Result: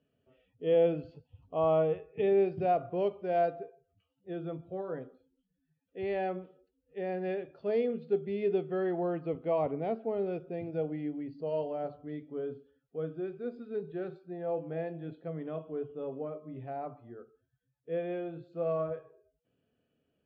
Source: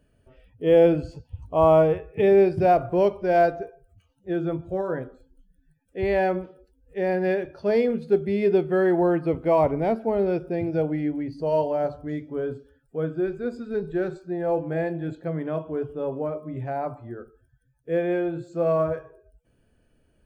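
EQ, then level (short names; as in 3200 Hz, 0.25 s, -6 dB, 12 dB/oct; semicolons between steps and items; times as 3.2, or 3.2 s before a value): speaker cabinet 200–3300 Hz, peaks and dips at 210 Hz -5 dB, 340 Hz -8 dB, 580 Hz -6 dB, 930 Hz -10 dB, 1600 Hz -8 dB, 2200 Hz -6 dB; bell 1500 Hz -2.5 dB 1.4 oct; -4.0 dB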